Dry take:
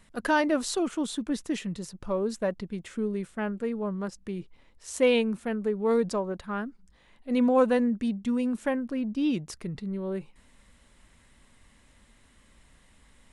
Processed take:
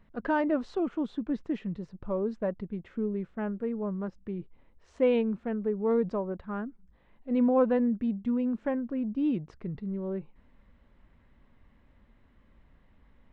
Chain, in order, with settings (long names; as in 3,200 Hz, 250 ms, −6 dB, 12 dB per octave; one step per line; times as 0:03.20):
head-to-tape spacing loss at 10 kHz 43 dB